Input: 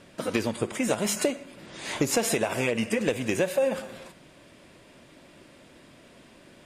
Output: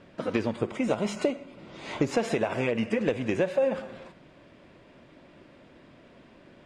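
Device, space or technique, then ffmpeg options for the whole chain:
through cloth: -filter_complex "[0:a]lowpass=6.4k,highshelf=f=3.7k:g=-12.5,asettb=1/sr,asplit=3[a][b][c];[a]atrim=end=0.704[d];[b]atrim=start=0.7:end=1.99,asetpts=PTS-STARTPTS,afade=t=in:d=0.004:c=qsin,afade=t=out:st=1.286:d=0.004:c=qsin,bandreject=f=1.7k:w=5.9[e];[c]atrim=start=1.986[f];[d][e]acrossfade=d=0.004:c1=hsin:c2=qsin[g];[g][f]acrossfade=d=0.004:c1=qsin:c2=hsin"

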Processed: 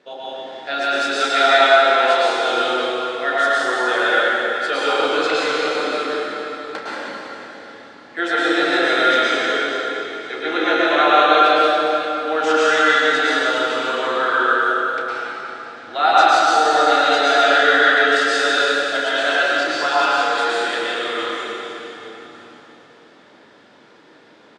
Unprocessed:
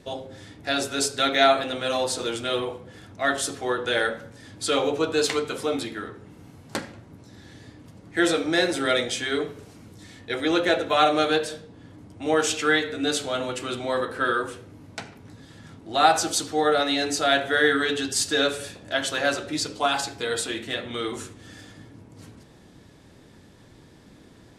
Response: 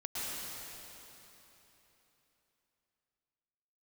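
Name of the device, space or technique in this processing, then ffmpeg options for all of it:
station announcement: -filter_complex "[0:a]asettb=1/sr,asplit=3[a][b][c];[a]atrim=end=0.994[d];[b]atrim=start=0.99:end=2.22,asetpts=PTS-STARTPTS,afade=t=in:d=0.004:c=qsin,afade=t=out:st=1.226:d=0.004:c=qsin,highpass=230[e];[c]atrim=start=2.216[f];[d][e]acrossfade=d=0.004:c1=hsin:c2=qsin[g];[g][f]acrossfade=d=0.004:c1=qsin:c2=hsin,highpass=440,lowpass=3.8k,equalizer=f=1.4k:t=o:w=0.21:g=6,aecho=1:1:32.07|174.9:0.316|0.282[h];[1:a]atrim=start_sample=2205[i];[h][i]afir=irnorm=-1:irlink=0,volume=4dB"

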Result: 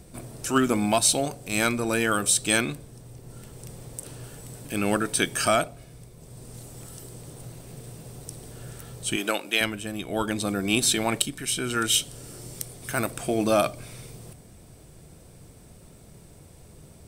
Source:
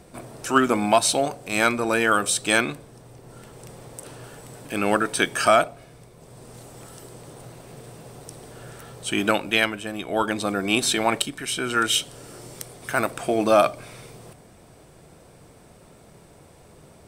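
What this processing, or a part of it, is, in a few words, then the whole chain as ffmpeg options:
smiley-face EQ: -filter_complex "[0:a]lowshelf=f=140:g=8.5,equalizer=f=1k:t=o:w=2.3:g=-5.5,highshelf=f=6.5k:g=6.5,asettb=1/sr,asplit=3[a][b][c];[a]atrim=end=9.164[d];[b]atrim=start=9.16:end=9.61,asetpts=PTS-STARTPTS,afade=t=in:d=0.004:c=qsin,afade=t=out:st=0.446:d=0.004:c=qsin,highpass=380[e];[c]atrim=start=9.606[f];[d][e]acrossfade=d=0.004:c1=hsin:c2=qsin[g];[g][f]acrossfade=d=0.004:c1=qsin:c2=hsin,volume=-1.5dB"

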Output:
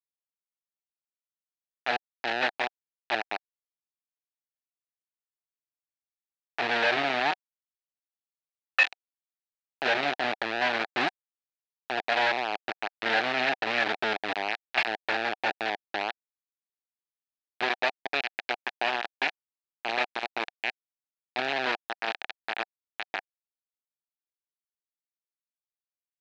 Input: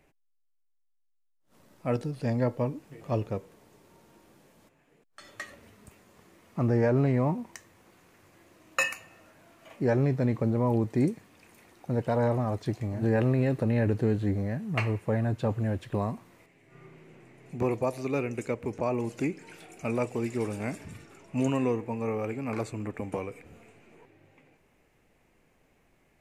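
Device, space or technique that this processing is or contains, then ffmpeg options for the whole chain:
hand-held game console: -af "acrusher=bits=3:mix=0:aa=0.000001,highpass=490,equalizer=f=510:t=q:w=4:g=-7,equalizer=f=750:t=q:w=4:g=8,equalizer=f=1.1k:t=q:w=4:g=-6,equalizer=f=1.7k:t=q:w=4:g=7,equalizer=f=2.5k:t=q:w=4:g=6,equalizer=f=4k:t=q:w=4:g=4,lowpass=f=4.2k:w=0.5412,lowpass=f=4.2k:w=1.3066"

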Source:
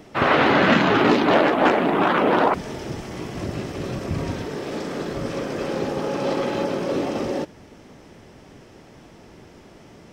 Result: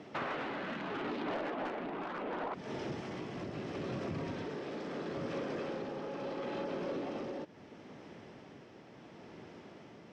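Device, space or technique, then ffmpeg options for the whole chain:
AM radio: -af "highpass=130,lowpass=4.3k,acompressor=threshold=-29dB:ratio=6,asoftclip=type=tanh:threshold=-25.5dB,tremolo=f=0.74:d=0.32,volume=-4dB"

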